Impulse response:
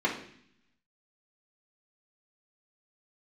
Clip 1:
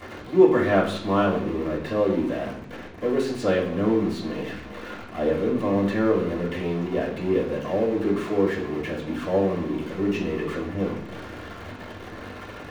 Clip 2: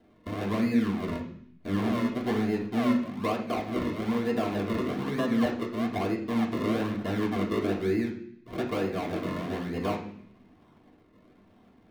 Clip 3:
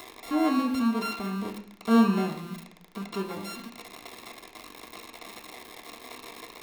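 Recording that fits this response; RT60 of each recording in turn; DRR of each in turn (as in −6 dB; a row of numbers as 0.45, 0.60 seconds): 2; 0.60, 0.60, 0.60 seconds; −11.5, −5.0, 0.5 decibels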